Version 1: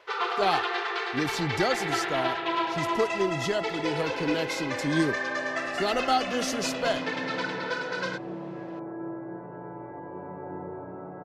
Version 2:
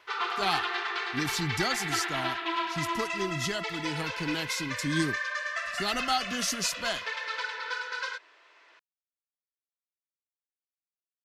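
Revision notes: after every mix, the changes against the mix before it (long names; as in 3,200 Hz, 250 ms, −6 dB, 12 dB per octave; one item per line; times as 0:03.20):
speech: add high-shelf EQ 5,000 Hz +6.5 dB
second sound: muted
master: add parametric band 520 Hz −12.5 dB 0.97 octaves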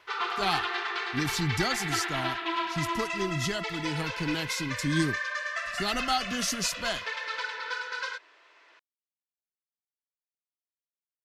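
master: add low-shelf EQ 140 Hz +7.5 dB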